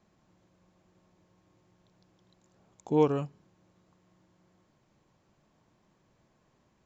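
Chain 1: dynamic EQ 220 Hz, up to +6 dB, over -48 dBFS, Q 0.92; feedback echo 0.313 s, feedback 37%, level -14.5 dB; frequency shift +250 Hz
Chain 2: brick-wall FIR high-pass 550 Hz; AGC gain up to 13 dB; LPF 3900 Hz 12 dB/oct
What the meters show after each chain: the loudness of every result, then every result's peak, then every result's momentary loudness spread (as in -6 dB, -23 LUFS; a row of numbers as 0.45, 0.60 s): -26.5, -27.0 LUFS; -10.0, -9.0 dBFS; 20, 18 LU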